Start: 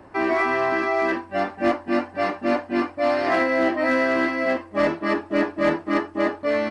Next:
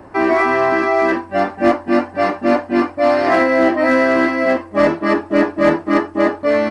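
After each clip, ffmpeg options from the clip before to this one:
-af "equalizer=f=3.1k:w=0.82:g=-4,volume=7.5dB"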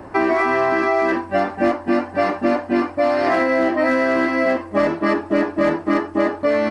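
-af "acompressor=threshold=-17dB:ratio=6,volume=2.5dB"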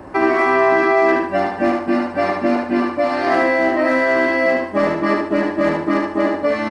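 -af "aecho=1:1:74|148|222|296:0.631|0.215|0.0729|0.0248"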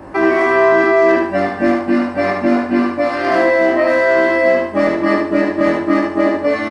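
-filter_complex "[0:a]asplit=2[a][b];[b]adelay=21,volume=-2dB[c];[a][c]amix=inputs=2:normalize=0"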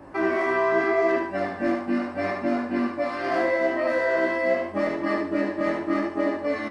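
-af "flanger=delay=7:depth=9.3:regen=62:speed=0.8:shape=sinusoidal,volume=-6dB"

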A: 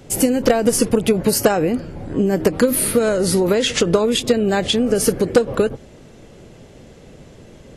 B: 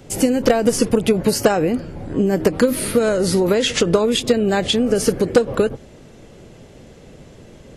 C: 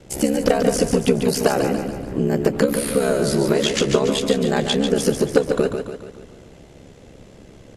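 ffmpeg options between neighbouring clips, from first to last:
-filter_complex "[0:a]acrossover=split=8300[a][b];[b]acompressor=threshold=-32dB:ratio=4:attack=1:release=60[c];[a][c]amix=inputs=2:normalize=0"
-filter_complex "[0:a]aeval=exprs='val(0)*sin(2*PI*34*n/s)':c=same,asplit=2[a][b];[b]aecho=0:1:143|286|429|572|715|858:0.473|0.241|0.123|0.0628|0.032|0.0163[c];[a][c]amix=inputs=2:normalize=0"

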